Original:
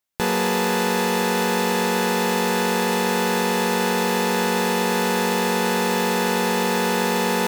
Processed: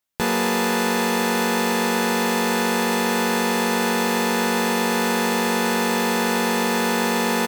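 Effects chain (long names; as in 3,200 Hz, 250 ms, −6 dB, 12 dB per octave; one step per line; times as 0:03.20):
double-tracking delay 13 ms −7.5 dB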